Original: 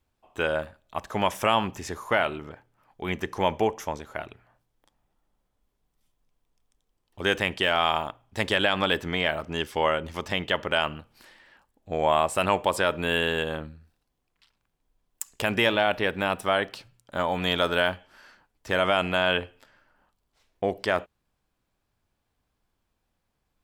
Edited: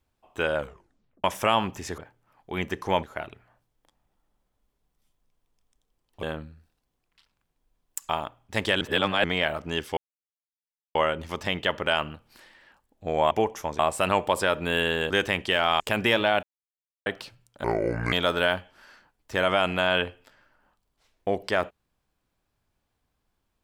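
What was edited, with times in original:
0.56 tape stop 0.68 s
1.98–2.49 cut
3.54–4.02 move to 12.16
7.22–7.92 swap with 13.47–15.33
8.64–9.07 reverse
9.8 insert silence 0.98 s
15.96–16.59 mute
17.17–17.48 speed 64%

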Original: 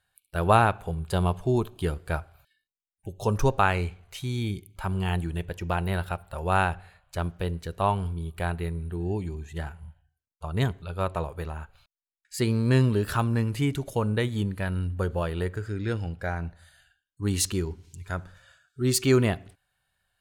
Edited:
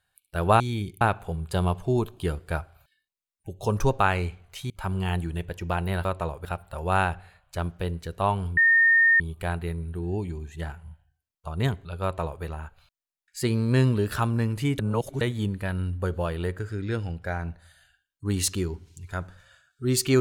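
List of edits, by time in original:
4.29–4.7 move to 0.6
8.17 add tone 1830 Hz -15 dBFS 0.63 s
11–11.4 copy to 6.05
13.76–14.18 reverse

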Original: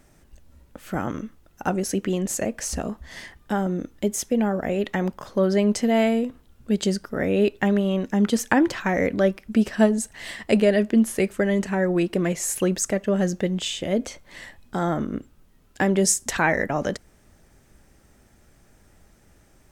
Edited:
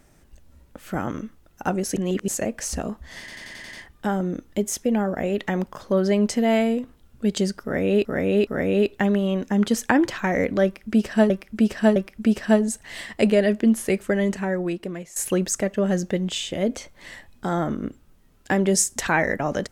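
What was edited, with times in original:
1.96–2.28 reverse
3.19 stutter 0.09 s, 7 plays
7.09–7.51 loop, 3 plays
9.26–9.92 loop, 3 plays
11.55–12.46 fade out, to -17.5 dB

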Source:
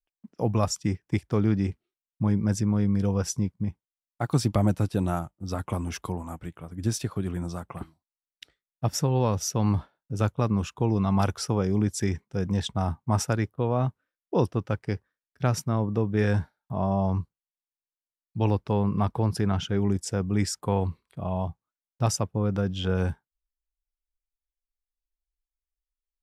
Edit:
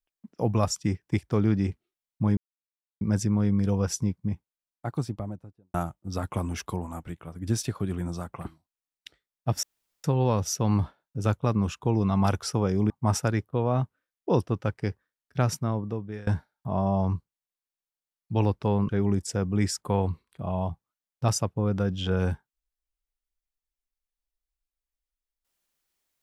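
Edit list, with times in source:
2.37 insert silence 0.64 s
3.65–5.1 studio fade out
8.99 insert room tone 0.41 s
11.85–12.95 cut
15.58–16.32 fade out, to -23.5 dB
18.94–19.67 cut

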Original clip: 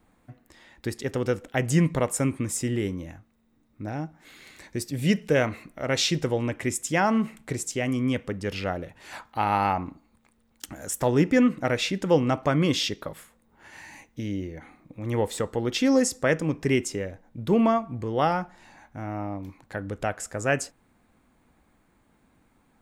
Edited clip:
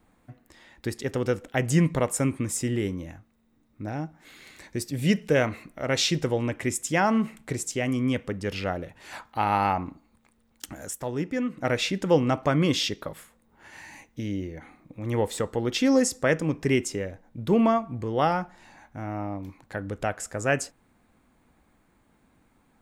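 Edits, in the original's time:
10.82–11.68 dip -8.5 dB, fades 0.16 s

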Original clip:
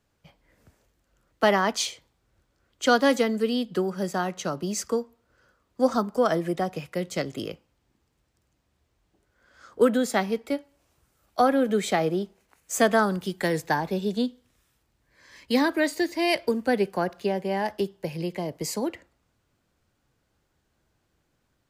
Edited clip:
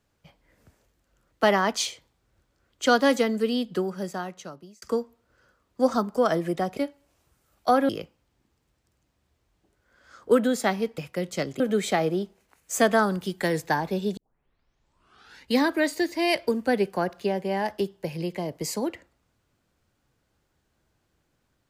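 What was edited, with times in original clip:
3.67–4.82 fade out
6.77–7.39 swap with 10.48–11.6
14.17 tape start 1.37 s

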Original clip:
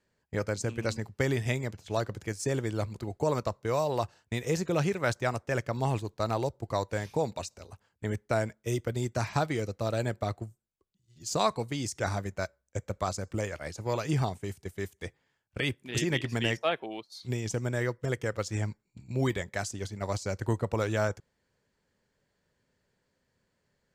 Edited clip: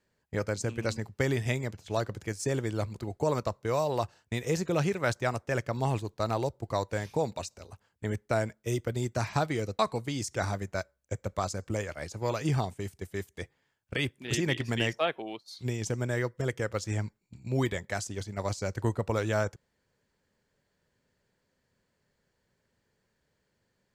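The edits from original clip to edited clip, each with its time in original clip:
9.79–11.43 cut

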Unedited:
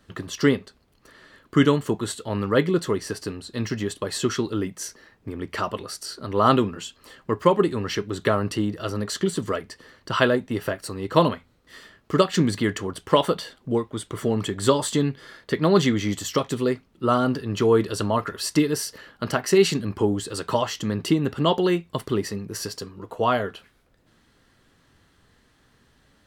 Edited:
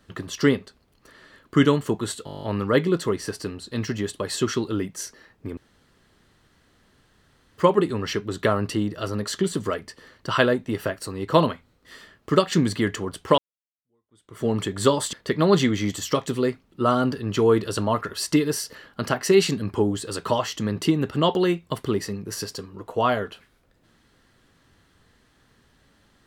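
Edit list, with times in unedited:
2.25 stutter 0.02 s, 10 plays
5.39–7.4 room tone
13.2–14.28 fade in exponential
14.95–15.36 cut

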